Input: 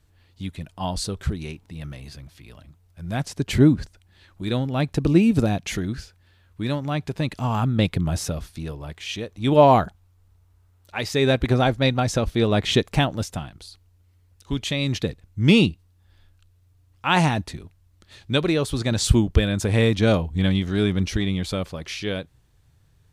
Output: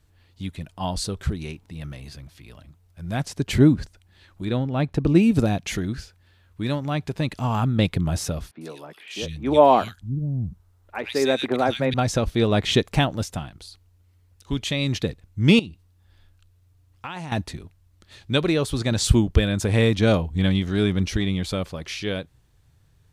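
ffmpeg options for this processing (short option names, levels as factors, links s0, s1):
-filter_complex "[0:a]asettb=1/sr,asplit=3[s0][s1][s2];[s0]atrim=end=4.454[s3];[s1]atrim=start=4.45:end=5.15,asetpts=PTS-STARTPTS,afade=t=in:d=0.004:c=qsin,afade=t=out:st=0.696:d=0.004:c=qsin,highshelf=f=3800:g=-10.5[s4];[s2]atrim=start=5.146[s5];[s3][s4]acrossfade=d=0.004:c1=hsin:c2=qsin[s6];[s6][s5]acrossfade=d=0.004:c1=qsin:c2=hsin,asettb=1/sr,asplit=3[s7][s8][s9];[s7]atrim=end=8.514[s10];[s8]atrim=start=8.51:end=11.94,asetpts=PTS-STARTPTS,afade=t=in:d=0.004:c=qsin,afade=t=out:st=3.426:d=0.004:c=qsin,acrossover=split=200|2200[s11][s12][s13];[s13]adelay=100[s14];[s11]adelay=650[s15];[s15][s12][s14]amix=inputs=3:normalize=0,atrim=end_sample=151263[s16];[s9]atrim=start=11.936[s17];[s10][s16]acrossfade=d=0.004:c1=hsin:c2=qsin[s18];[s18][s17]acrossfade=d=0.004:c1=qsin:c2=hsin,asettb=1/sr,asplit=3[s19][s20][s21];[s19]atrim=end=15.594[s22];[s20]atrim=start=15.59:end=17.32,asetpts=PTS-STARTPTS,afade=t=in:d=0.004:c=qsin,afade=t=out:st=1.726:d=0.004:c=qsin,acompressor=threshold=0.0355:ratio=16:attack=3.2:release=140:knee=1:detection=peak[s23];[s21]atrim=start=17.316[s24];[s22][s23]acrossfade=d=0.004:c1=hsin:c2=qsin[s25];[s25][s24]acrossfade=d=0.004:c1=qsin:c2=hsin"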